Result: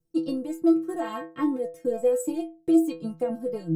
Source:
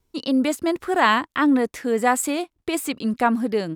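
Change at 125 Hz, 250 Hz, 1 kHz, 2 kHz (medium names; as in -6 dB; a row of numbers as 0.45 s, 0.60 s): no reading, -3.0 dB, -16.0 dB, -21.5 dB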